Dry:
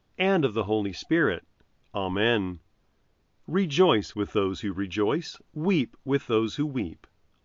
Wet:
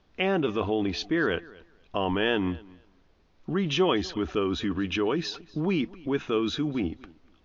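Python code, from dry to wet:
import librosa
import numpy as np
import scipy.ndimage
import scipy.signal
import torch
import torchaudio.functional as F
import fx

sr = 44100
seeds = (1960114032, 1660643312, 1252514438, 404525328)

p1 = fx.over_compress(x, sr, threshold_db=-31.0, ratio=-1.0)
p2 = x + (p1 * 10.0 ** (0.0 / 20.0))
p3 = scipy.signal.sosfilt(scipy.signal.butter(4, 5900.0, 'lowpass', fs=sr, output='sos'), p2)
p4 = fx.peak_eq(p3, sr, hz=120.0, db=-11.5, octaves=0.34)
p5 = fx.echo_feedback(p4, sr, ms=242, feedback_pct=18, wet_db=-22.5)
y = p5 * 10.0 ** (-4.0 / 20.0)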